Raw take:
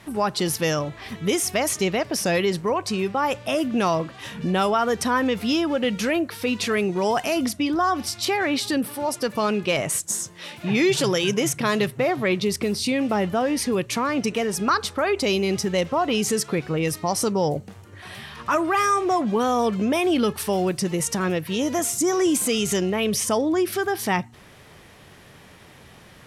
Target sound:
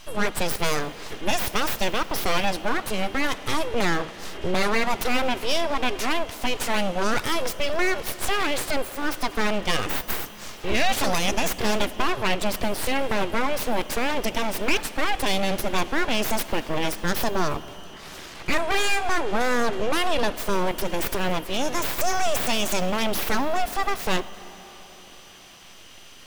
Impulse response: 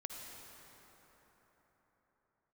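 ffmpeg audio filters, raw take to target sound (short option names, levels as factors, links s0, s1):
-filter_complex "[0:a]aeval=exprs='val(0)+0.00501*sin(2*PI*3000*n/s)':c=same,aeval=exprs='abs(val(0))':c=same,asplit=2[s0][s1];[1:a]atrim=start_sample=2205[s2];[s1][s2]afir=irnorm=-1:irlink=0,volume=0.355[s3];[s0][s3]amix=inputs=2:normalize=0"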